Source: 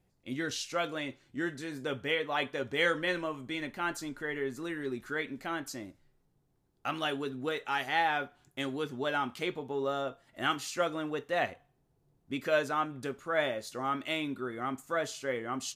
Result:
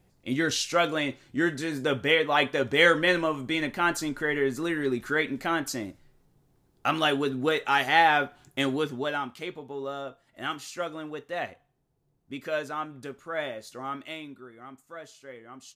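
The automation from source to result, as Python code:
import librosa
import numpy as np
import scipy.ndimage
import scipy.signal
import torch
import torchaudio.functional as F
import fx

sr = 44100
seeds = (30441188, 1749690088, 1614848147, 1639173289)

y = fx.gain(x, sr, db=fx.line((8.72, 8.5), (9.35, -2.0), (13.94, -2.0), (14.51, -10.5)))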